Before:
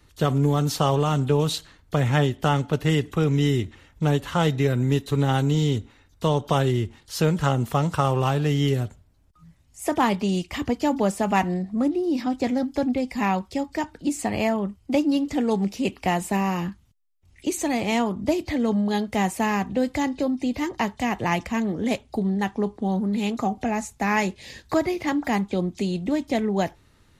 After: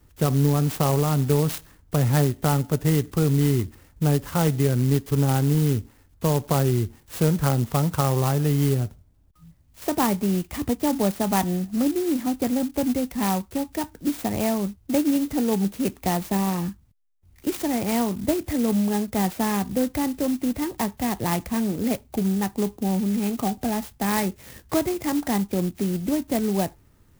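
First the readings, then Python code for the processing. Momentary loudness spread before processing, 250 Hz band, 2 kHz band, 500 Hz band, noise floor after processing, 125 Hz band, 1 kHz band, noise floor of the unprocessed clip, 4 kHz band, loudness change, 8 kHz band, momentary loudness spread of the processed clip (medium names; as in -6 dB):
6 LU, +0.5 dB, -5.0 dB, -1.0 dB, -57 dBFS, +1.5 dB, -3.0 dB, -58 dBFS, -2.5 dB, +0.5 dB, +4.0 dB, 6 LU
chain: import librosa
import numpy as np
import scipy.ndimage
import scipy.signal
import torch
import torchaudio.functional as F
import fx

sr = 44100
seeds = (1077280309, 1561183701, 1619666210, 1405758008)

y = fx.low_shelf(x, sr, hz=410.0, db=5.0)
y = fx.clock_jitter(y, sr, seeds[0], jitter_ms=0.079)
y = y * 10.0 ** (-3.0 / 20.0)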